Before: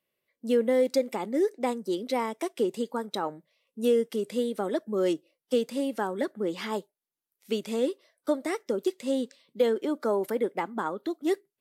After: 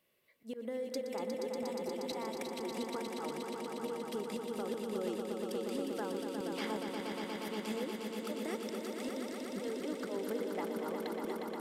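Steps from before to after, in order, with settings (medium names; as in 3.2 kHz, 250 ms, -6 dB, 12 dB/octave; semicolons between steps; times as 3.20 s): slow attack 512 ms; compression 6:1, threshold -45 dBFS, peak gain reduction 22 dB; echo with a slow build-up 119 ms, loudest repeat 5, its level -6 dB; trim +6 dB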